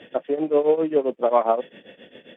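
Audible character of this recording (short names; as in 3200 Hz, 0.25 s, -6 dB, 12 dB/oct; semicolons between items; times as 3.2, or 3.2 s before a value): tremolo triangle 7.5 Hz, depth 90%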